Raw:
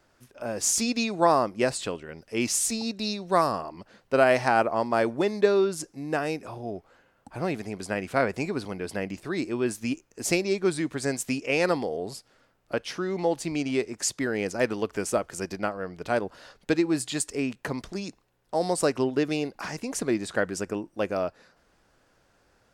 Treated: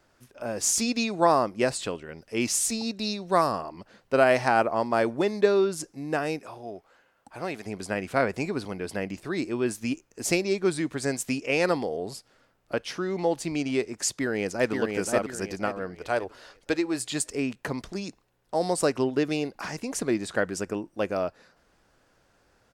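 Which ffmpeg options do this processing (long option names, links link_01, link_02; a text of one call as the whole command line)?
ffmpeg -i in.wav -filter_complex "[0:a]asettb=1/sr,asplit=3[link_01][link_02][link_03];[link_01]atrim=end=6.394[link_04];[link_02]atrim=start=6.39:end=7.66,asetpts=PTS-STARTPTS,afade=type=in:duration=0.004:curve=qsin,afade=type=out:start_time=1.266:duration=0.004:curve=qsin,lowshelf=frequency=320:gain=-11[link_05];[link_03]atrim=start=7.656[link_06];[link_04][link_05]acrossfade=duration=0.004:curve1=hsin:curve2=qsin[link_07];[link_07][link_06]acrossfade=duration=0.004:curve1=qsin:curve2=hsin,asplit=2[link_08][link_09];[link_09]afade=type=in:start_time=14.1:duration=0.01,afade=type=out:start_time=14.73:duration=0.01,aecho=0:1:530|1060|1590|2120|2650:0.668344|0.23392|0.0818721|0.0286552|0.0100293[link_10];[link_08][link_10]amix=inputs=2:normalize=0,asettb=1/sr,asplit=3[link_11][link_12][link_13];[link_11]atrim=end=15.954[link_14];[link_12]atrim=start=15.95:end=17.1,asetpts=PTS-STARTPTS,afade=type=in:duration=0.004:curve=qsin,afade=type=out:start_time=1.146:duration=0.004:curve=qsin,equalizer=frequency=190:width=1.5:gain=-12[link_15];[link_13]atrim=start=17.096[link_16];[link_14][link_15]acrossfade=duration=0.004:curve1=hsin:curve2=qsin[link_17];[link_17][link_16]acrossfade=duration=0.004:curve1=qsin:curve2=hsin" out.wav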